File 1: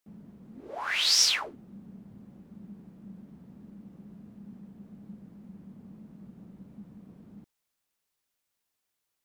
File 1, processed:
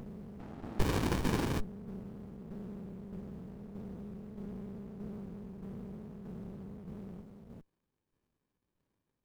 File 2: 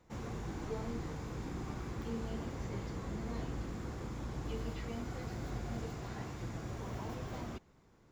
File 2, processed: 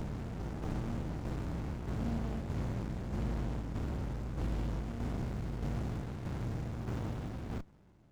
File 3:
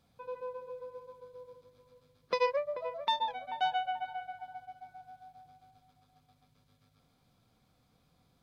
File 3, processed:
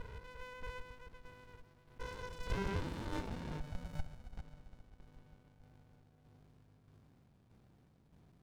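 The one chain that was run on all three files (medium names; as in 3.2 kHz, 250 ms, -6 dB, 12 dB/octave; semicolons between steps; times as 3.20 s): spectrogram pixelated in time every 400 ms; tremolo saw down 1.6 Hz, depth 45%; sliding maximum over 65 samples; trim +9 dB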